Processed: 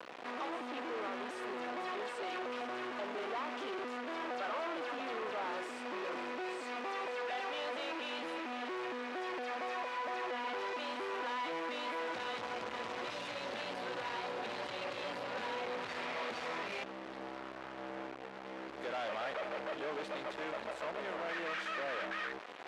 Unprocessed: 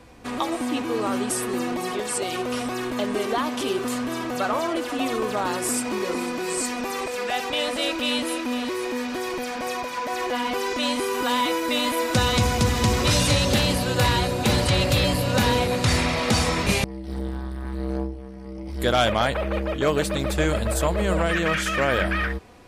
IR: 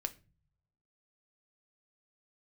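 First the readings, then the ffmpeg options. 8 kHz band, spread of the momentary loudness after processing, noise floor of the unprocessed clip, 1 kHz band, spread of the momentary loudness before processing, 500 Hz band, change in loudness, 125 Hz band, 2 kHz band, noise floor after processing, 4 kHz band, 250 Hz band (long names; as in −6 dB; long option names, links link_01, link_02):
−28.5 dB, 4 LU, −35 dBFS, −12.0 dB, 8 LU, −14.5 dB, −16.0 dB, −35.5 dB, −12.5 dB, −47 dBFS, −18.5 dB, −20.0 dB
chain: -af "aeval=exprs='(tanh(56.2*val(0)+0.3)-tanh(0.3))/56.2':channel_layout=same,acrusher=bits=5:dc=4:mix=0:aa=0.000001,highpass=420,lowpass=2600,volume=7dB"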